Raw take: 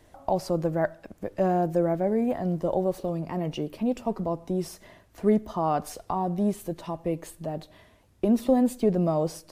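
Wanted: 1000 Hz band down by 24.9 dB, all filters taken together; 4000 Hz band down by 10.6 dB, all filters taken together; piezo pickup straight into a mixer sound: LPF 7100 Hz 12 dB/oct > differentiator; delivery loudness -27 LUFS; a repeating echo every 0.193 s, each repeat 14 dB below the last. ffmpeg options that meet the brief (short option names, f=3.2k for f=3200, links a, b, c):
-af "lowpass=7.1k,aderivative,equalizer=f=1k:t=o:g=-9,equalizer=f=4k:t=o:g=-7,aecho=1:1:193|386:0.2|0.0399,volume=25dB"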